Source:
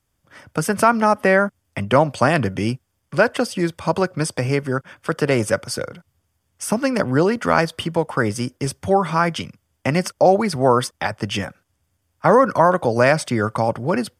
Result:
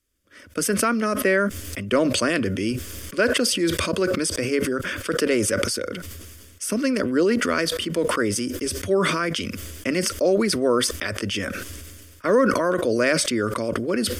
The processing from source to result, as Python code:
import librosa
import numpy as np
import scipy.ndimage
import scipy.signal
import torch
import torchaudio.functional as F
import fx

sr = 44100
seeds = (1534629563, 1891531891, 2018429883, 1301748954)

y = fx.fixed_phaser(x, sr, hz=340.0, stages=4)
y = fx.sustainer(y, sr, db_per_s=29.0)
y = F.gain(torch.from_numpy(y), -1.0).numpy()